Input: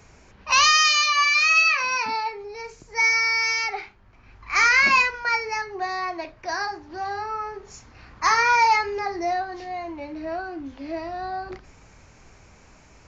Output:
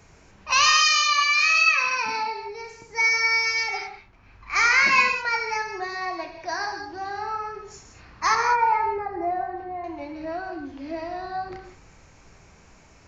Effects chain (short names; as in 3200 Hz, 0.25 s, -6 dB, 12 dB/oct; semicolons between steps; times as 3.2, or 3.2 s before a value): 8.35–9.84 LPF 1300 Hz 12 dB/oct; non-linear reverb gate 0.22 s flat, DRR 4.5 dB; gain -2 dB